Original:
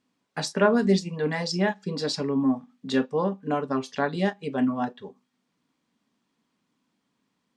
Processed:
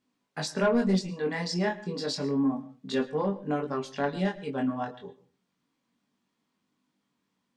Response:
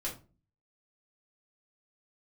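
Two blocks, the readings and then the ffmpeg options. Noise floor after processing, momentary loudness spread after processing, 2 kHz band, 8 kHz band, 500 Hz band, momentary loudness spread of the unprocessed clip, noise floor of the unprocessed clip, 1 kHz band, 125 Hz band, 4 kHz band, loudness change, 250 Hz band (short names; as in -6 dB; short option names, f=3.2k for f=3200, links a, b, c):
-80 dBFS, 10 LU, -4.0 dB, -3.5 dB, -3.5 dB, 9 LU, -77 dBFS, -4.0 dB, -2.5 dB, -3.5 dB, -3.5 dB, -3.5 dB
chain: -filter_complex "[0:a]flanger=delay=20:depth=2.6:speed=0.3,asoftclip=type=tanh:threshold=-16dB,asplit=2[a][b];[1:a]atrim=start_sample=2205,adelay=106[c];[b][c]afir=irnorm=-1:irlink=0,volume=-19.5dB[d];[a][d]amix=inputs=2:normalize=0"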